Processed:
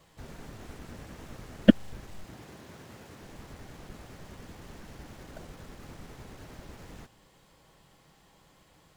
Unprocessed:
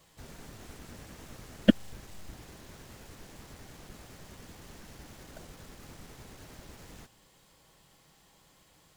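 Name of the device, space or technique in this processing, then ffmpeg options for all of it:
behind a face mask: -filter_complex "[0:a]asettb=1/sr,asplit=3[link_01][link_02][link_03];[link_01]atrim=end=2.244[link_04];[link_02]atrim=start=2.24:end=3.23,asetpts=PTS-STARTPTS,afade=type=in:duration=0.004:curve=qsin,afade=type=out:start_time=0.986:duration=0.004:curve=qsin,highpass=99[link_05];[link_03]atrim=start=3.226[link_06];[link_04][link_05]acrossfade=duration=0.004:curve1=hsin:curve2=qsin[link_07];[link_07][link_06]acrossfade=duration=0.004:curve1=qsin:curve2=hsin,highshelf=frequency=3400:gain=-8,volume=3.5dB"

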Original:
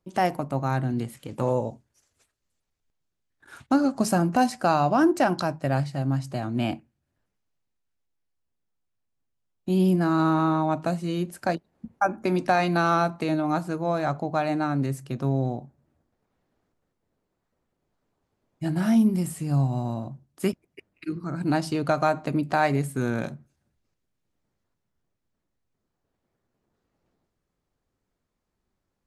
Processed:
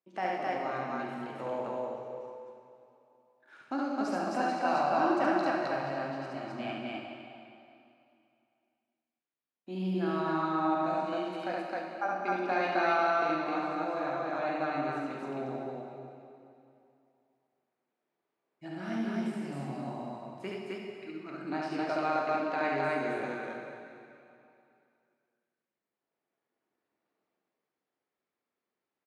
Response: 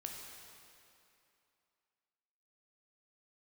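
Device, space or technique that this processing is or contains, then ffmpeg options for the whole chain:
station announcement: -filter_complex "[0:a]highpass=310,lowpass=4200,equalizer=frequency=2200:width_type=o:width=0.57:gain=4,aecho=1:1:69.97|262.4:0.794|1[link_01];[1:a]atrim=start_sample=2205[link_02];[link_01][link_02]afir=irnorm=-1:irlink=0,volume=-7dB"

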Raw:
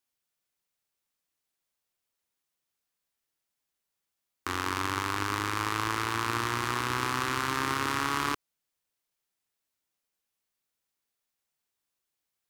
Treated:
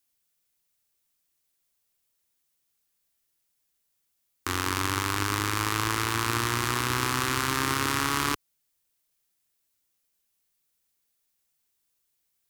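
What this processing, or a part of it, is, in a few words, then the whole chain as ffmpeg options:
smiley-face EQ: -af "lowshelf=frequency=96:gain=5.5,equalizer=frequency=910:width_type=o:width=1.9:gain=-3,highshelf=frequency=6800:gain=7.5,volume=3.5dB"

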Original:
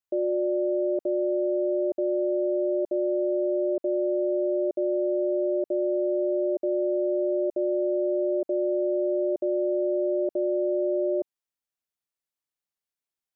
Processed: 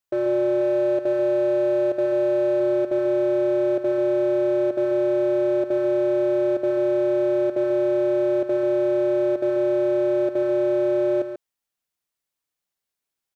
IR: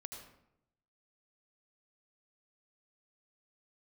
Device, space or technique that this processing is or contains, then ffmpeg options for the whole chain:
limiter into clipper: -filter_complex "[0:a]asettb=1/sr,asplit=3[link_01][link_02][link_03];[link_01]atrim=end=0.614[link_04];[link_02]atrim=start=0.61:end=2.6,asetpts=PTS-STARTPTS,afade=type=in:duration=0.004:curve=qsin,afade=type=out:start_time=1.986:duration=0.004:curve=qsin,equalizer=frequency=610:width=1.7:gain=4[link_05];[link_03]atrim=start=2.596[link_06];[link_04][link_05]acrossfade=duration=0.004:curve1=hsin:curve2=qsin[link_07];[link_07][link_06]acrossfade=duration=0.004:curve1=qsin:curve2=hsin,alimiter=limit=-21dB:level=0:latency=1:release=21,asoftclip=type=hard:threshold=-24dB,aecho=1:1:139:0.355,volume=5.5dB"

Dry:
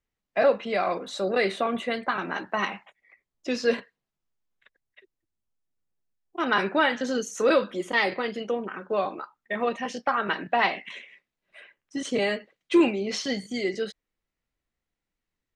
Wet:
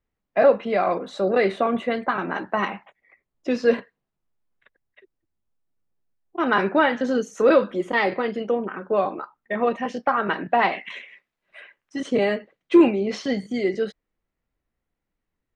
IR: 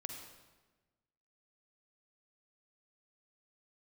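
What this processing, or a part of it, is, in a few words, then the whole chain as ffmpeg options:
through cloth: -filter_complex "[0:a]highshelf=frequency=2800:gain=-14.5,asettb=1/sr,asplit=3[link_01][link_02][link_03];[link_01]atrim=end=10.724[link_04];[link_02]atrim=start=10.72:end=12,asetpts=PTS-STARTPTS,afade=type=in:duration=0.004:curve=qsin,afade=type=out:start_time=1.276:duration=0.004:curve=qsin,tiltshelf=frequency=700:gain=-5.5[link_05];[link_03]atrim=start=11.996[link_06];[link_04][link_05]acrossfade=duration=0.004:curve1=hsin:curve2=qsin[link_07];[link_07][link_06]acrossfade=duration=0.004:curve1=qsin:curve2=hsin,volume=5.5dB"

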